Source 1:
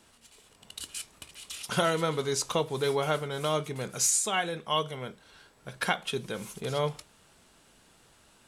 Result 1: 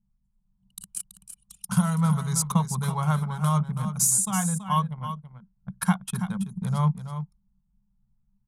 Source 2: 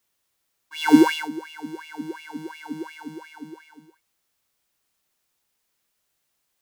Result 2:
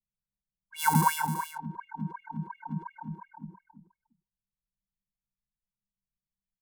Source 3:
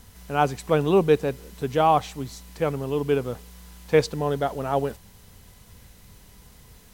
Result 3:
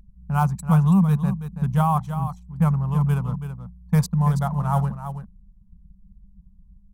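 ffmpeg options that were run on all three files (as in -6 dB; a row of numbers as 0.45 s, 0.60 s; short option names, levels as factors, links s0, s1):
-af "anlmdn=6.31,asoftclip=type=hard:threshold=0.398,firequalizer=gain_entry='entry(110,0);entry(190,14);entry(290,-29);entry(890,-3);entry(1800,-12);entry(2900,-16);entry(5100,-8);entry(9600,6)':delay=0.05:min_phase=1,alimiter=limit=0.133:level=0:latency=1:release=398,aecho=1:1:329:0.316,adynamicequalizer=threshold=0.00224:dfrequency=1100:dqfactor=4.1:tfrequency=1100:tqfactor=4.1:attack=5:release=100:ratio=0.375:range=2.5:mode=boostabove:tftype=bell,volume=2.11"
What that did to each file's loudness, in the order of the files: +4.5 LU, -8.5 LU, +2.0 LU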